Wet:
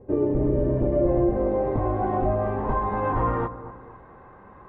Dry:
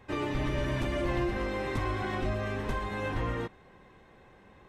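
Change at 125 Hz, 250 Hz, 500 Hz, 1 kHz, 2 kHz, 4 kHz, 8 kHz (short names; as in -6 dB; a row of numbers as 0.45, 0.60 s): +6.5 dB, +9.0 dB, +10.5 dB, +9.5 dB, -4.5 dB, under -15 dB, under -25 dB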